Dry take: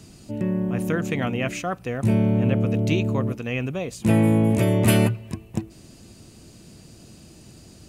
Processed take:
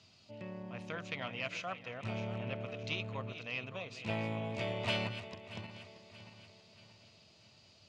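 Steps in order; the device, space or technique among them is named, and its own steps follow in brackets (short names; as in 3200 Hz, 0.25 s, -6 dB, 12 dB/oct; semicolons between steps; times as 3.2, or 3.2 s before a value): regenerating reverse delay 0.315 s, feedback 66%, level -11.5 dB; passive tone stack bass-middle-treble 5-5-5; guitar amplifier (tube stage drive 23 dB, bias 0.65; tone controls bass -10 dB, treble +1 dB; speaker cabinet 88–4500 Hz, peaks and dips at 97 Hz +9 dB, 320 Hz -6 dB, 620 Hz +7 dB, 1000 Hz +3 dB, 1700 Hz -6 dB); gain +5 dB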